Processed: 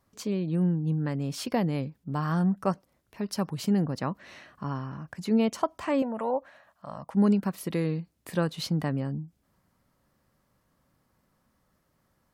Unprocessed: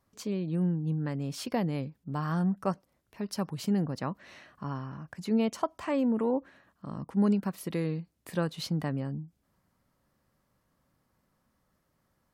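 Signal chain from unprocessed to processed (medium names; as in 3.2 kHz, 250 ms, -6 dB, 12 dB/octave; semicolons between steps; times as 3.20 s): 6.02–7.15 s: resonant low shelf 480 Hz -8 dB, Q 3; trim +3 dB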